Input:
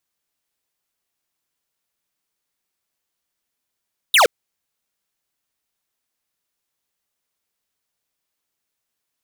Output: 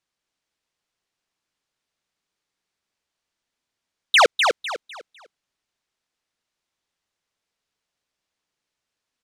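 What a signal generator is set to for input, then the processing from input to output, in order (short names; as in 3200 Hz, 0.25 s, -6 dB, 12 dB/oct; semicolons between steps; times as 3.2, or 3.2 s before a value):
laser zap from 4000 Hz, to 410 Hz, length 0.12 s square, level -12 dB
LPF 6200 Hz 12 dB/oct; on a send: feedback echo 0.251 s, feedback 30%, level -5 dB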